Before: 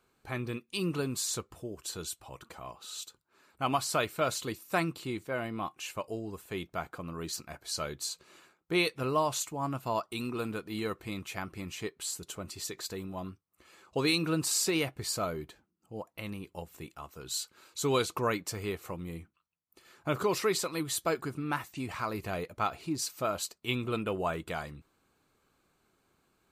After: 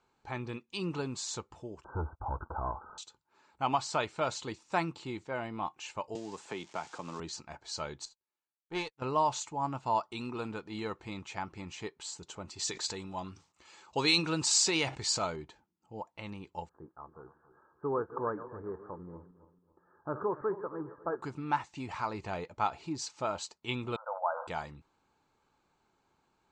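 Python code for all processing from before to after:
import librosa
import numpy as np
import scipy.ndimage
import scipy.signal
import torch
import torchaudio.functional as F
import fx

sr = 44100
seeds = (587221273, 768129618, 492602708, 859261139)

y = fx.chain(x, sr, fx.low_shelf_res(hz=110.0, db=11.0, q=1.5),
    fx.leveller(passes=3),
    fx.brickwall_lowpass(high_hz=1600.0), at=(1.84, 2.98))
y = fx.chain(y, sr, fx.crossing_spikes(level_db=-38.0),
    fx.highpass(hz=180.0, slope=12),
    fx.band_squash(depth_pct=100), at=(6.15, 7.2))
y = fx.chain(y, sr, fx.tube_stage(drive_db=24.0, bias=0.4),
    fx.upward_expand(threshold_db=-52.0, expansion=2.5), at=(8.05, 9.02))
y = fx.chain(y, sr, fx.high_shelf(hz=2300.0, db=10.0),
    fx.sustainer(db_per_s=140.0), at=(12.59, 15.36))
y = fx.chain(y, sr, fx.reverse_delay_fb(ms=138, feedback_pct=57, wet_db=-13.0),
    fx.cheby_ripple(hz=1700.0, ripple_db=6), at=(16.69, 21.22))
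y = fx.chain(y, sr, fx.brickwall_bandpass(low_hz=500.0, high_hz=1600.0),
    fx.sustainer(db_per_s=72.0), at=(23.96, 24.47))
y = scipy.signal.sosfilt(scipy.signal.butter(8, 7600.0, 'lowpass', fs=sr, output='sos'), y)
y = fx.peak_eq(y, sr, hz=880.0, db=12.5, octaves=0.27)
y = y * 10.0 ** (-3.5 / 20.0)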